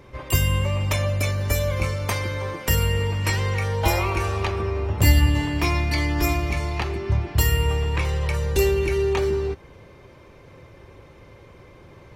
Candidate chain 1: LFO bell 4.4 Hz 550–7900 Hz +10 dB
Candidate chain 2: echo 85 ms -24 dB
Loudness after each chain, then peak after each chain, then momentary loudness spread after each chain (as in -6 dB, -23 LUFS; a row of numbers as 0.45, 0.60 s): -21.5, -23.0 LUFS; -3.5, -3.5 dBFS; 5, 5 LU